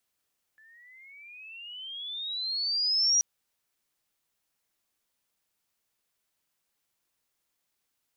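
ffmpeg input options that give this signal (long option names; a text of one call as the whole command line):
ffmpeg -f lavfi -i "aevalsrc='pow(10,(-19.5+35*(t/2.63-1))/20)*sin(2*PI*1730*2.63/(21*log(2)/12)*(exp(21*log(2)/12*t/2.63)-1))':duration=2.63:sample_rate=44100" out.wav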